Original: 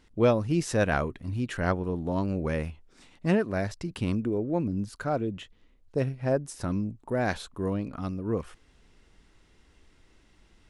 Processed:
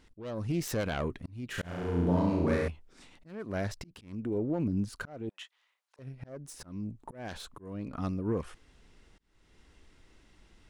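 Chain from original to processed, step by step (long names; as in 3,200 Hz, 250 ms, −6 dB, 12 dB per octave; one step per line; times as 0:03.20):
phase distortion by the signal itself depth 0.19 ms
0:05.29–0:05.99: high-pass filter 840 Hz 24 dB per octave
brickwall limiter −22 dBFS, peak gain reduction 11 dB
0:01.47–0:02.68: flutter between parallel walls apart 5.9 metres, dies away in 1 s
volume swells 415 ms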